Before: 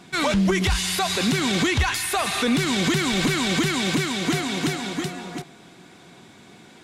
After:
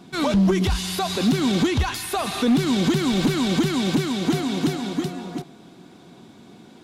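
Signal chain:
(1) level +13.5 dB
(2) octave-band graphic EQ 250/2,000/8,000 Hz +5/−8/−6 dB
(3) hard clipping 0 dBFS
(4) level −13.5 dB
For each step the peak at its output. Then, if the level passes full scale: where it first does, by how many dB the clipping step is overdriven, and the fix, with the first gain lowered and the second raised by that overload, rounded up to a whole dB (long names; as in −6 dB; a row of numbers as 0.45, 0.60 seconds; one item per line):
+2.0, +4.0, 0.0, −13.5 dBFS
step 1, 4.0 dB
step 1 +9.5 dB, step 4 −9.5 dB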